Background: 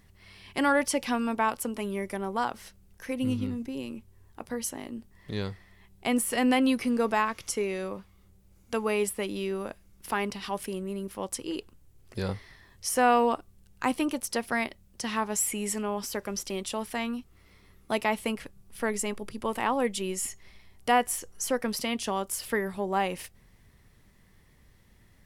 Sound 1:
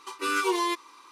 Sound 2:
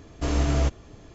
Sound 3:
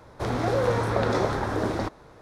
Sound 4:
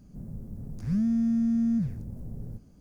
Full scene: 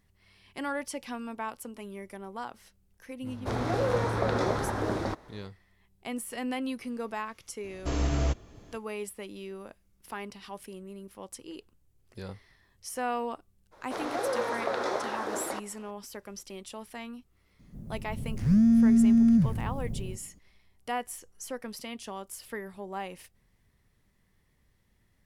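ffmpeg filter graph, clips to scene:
-filter_complex "[3:a]asplit=2[s0][s1];[0:a]volume=0.335[s2];[s1]highpass=420[s3];[4:a]dynaudnorm=f=120:g=9:m=2.66[s4];[s0]atrim=end=2.21,asetpts=PTS-STARTPTS,volume=0.668,afade=t=in:d=0.004:c=hsin,afade=t=out:st=2.206:d=0.004:c=hsin,adelay=3260[s5];[2:a]atrim=end=1.14,asetpts=PTS-STARTPTS,volume=0.596,afade=t=in:d=0.004:c=hsin,afade=t=out:st=1.136:d=0.004:c=hsin,adelay=7640[s6];[s3]atrim=end=2.21,asetpts=PTS-STARTPTS,volume=0.631,afade=t=in:d=0.02,afade=t=out:st=2.19:d=0.02,adelay=13710[s7];[s4]atrim=end=2.8,asetpts=PTS-STARTPTS,volume=0.668,afade=t=in:d=0.004:c=hsin,afade=t=out:st=2.796:d=0.004:c=hsin,adelay=17590[s8];[s2][s5][s6][s7][s8]amix=inputs=5:normalize=0"

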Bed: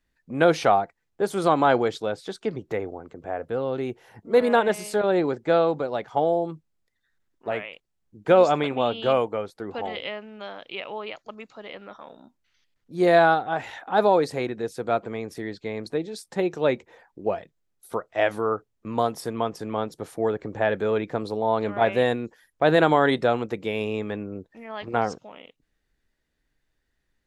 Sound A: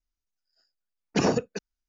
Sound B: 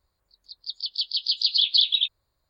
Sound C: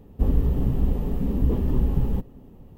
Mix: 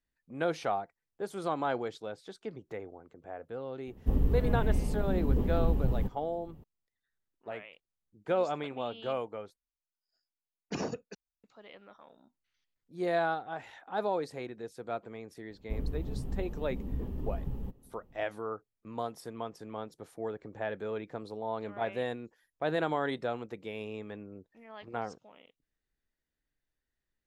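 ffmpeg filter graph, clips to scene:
-filter_complex "[3:a]asplit=2[s0][s1];[0:a]volume=0.237,asplit=2[s2][s3];[s2]atrim=end=9.564[s4];[1:a]atrim=end=1.88,asetpts=PTS-STARTPTS,volume=0.251[s5];[s3]atrim=start=11.436[s6];[s0]atrim=end=2.77,asetpts=PTS-STARTPTS,volume=0.501,afade=t=in:d=0.004:c=hsin,afade=t=out:st=2.766:d=0.004:c=hsin,adelay=3870[s7];[s1]atrim=end=2.77,asetpts=PTS-STARTPTS,volume=0.2,afade=t=in:d=0.004:c=hsin,afade=t=out:st=2.766:d=0.004:c=hsin,adelay=15500[s8];[s4][s5]acrossfade=d=0.004:c1=hsin:c2=hsin[s9];[s9][s6]acrossfade=d=0.004:c1=hsin:c2=hsin[s10];[s10][s7][s8]amix=inputs=3:normalize=0"

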